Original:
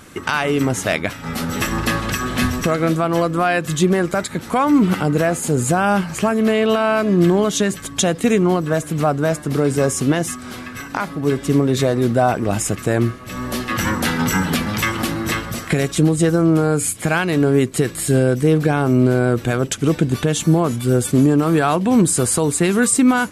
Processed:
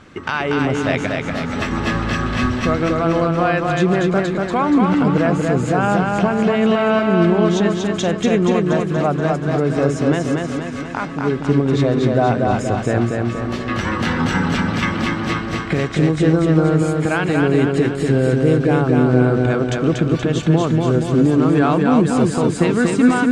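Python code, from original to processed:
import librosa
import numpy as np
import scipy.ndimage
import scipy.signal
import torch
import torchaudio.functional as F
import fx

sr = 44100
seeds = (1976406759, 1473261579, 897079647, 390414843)

y = fx.air_absorb(x, sr, metres=140.0)
y = fx.echo_feedback(y, sr, ms=238, feedback_pct=56, wet_db=-3.0)
y = y * 10.0 ** (-1.0 / 20.0)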